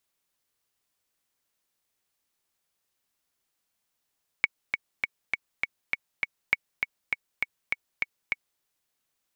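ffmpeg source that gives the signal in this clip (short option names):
-f lavfi -i "aevalsrc='pow(10,(-7.5-5*gte(mod(t,7*60/201),60/201))/20)*sin(2*PI*2230*mod(t,60/201))*exp(-6.91*mod(t,60/201)/0.03)':d=4.17:s=44100"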